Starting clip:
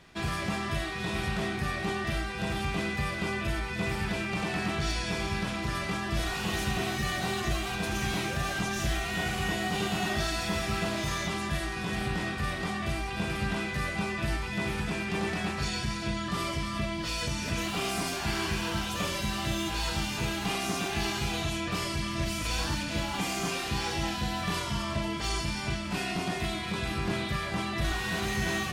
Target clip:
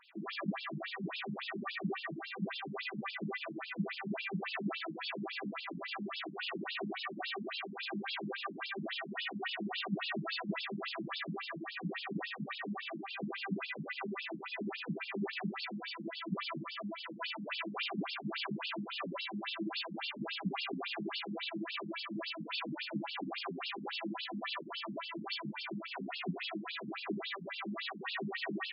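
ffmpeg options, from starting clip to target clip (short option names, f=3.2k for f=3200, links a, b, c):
-filter_complex "[0:a]asettb=1/sr,asplit=3[a][b][c];[a]atrim=end=17.204[d];[b]atrim=start=17.2:end=17.84,asetpts=PTS-STARTPTS,afade=t=in:d=0.004:c=qsin,afade=t=out:st=0.636:d=0.004:c=qsin,asplit=2[e][f];[f]highpass=f=720:p=1,volume=9dB,asoftclip=type=tanh:threshold=-19dB[g];[e][g]amix=inputs=2:normalize=0,lowpass=f=3.1k:p=1,volume=-6dB[h];[c]atrim=start=17.836[i];[d][h]acrossfade=d=0.004:c1=hsin:c2=qsin[j];[j][i]acrossfade=d=0.004:c1=qsin:c2=hsin,afftfilt=real='re*between(b*sr/1024,200*pow(3800/200,0.5+0.5*sin(2*PI*3.6*pts/sr))/1.41,200*pow(3800/200,0.5+0.5*sin(2*PI*3.6*pts/sr))*1.41)':imag='im*between(b*sr/1024,200*pow(3800/200,0.5+0.5*sin(2*PI*3.6*pts/sr))/1.41,200*pow(3800/200,0.5+0.5*sin(2*PI*3.6*pts/sr))*1.41)':win_size=1024:overlap=0.75"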